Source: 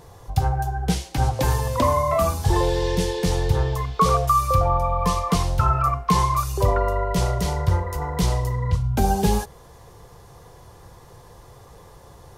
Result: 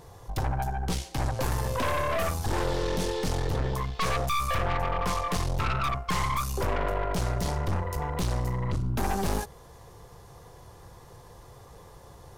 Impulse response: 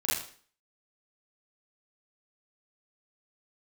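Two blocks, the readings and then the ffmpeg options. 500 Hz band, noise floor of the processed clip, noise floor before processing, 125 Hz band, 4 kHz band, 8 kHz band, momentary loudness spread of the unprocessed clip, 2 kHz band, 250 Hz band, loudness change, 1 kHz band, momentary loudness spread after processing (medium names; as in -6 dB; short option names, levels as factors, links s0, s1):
-7.0 dB, -50 dBFS, -47 dBFS, -8.0 dB, -4.0 dB, -5.5 dB, 5 LU, 0.0 dB, -7.5 dB, -7.5 dB, -8.0 dB, 4 LU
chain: -af "aeval=exprs='0.447*(cos(1*acos(clip(val(0)/0.447,-1,1)))-cos(1*PI/2))+0.158*(cos(4*acos(clip(val(0)/0.447,-1,1)))-cos(4*PI/2))':c=same,asoftclip=type=tanh:threshold=0.126,volume=0.708"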